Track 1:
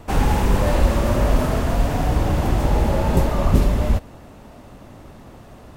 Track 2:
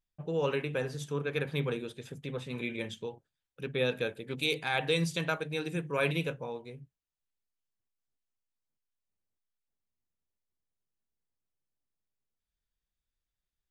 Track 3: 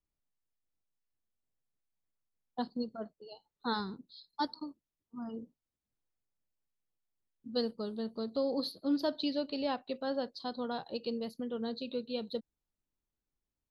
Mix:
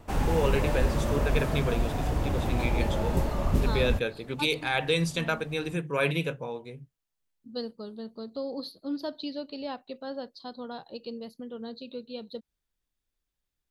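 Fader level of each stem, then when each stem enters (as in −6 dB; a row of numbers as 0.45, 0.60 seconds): −9.0, +3.0, −2.0 decibels; 0.00, 0.00, 0.00 seconds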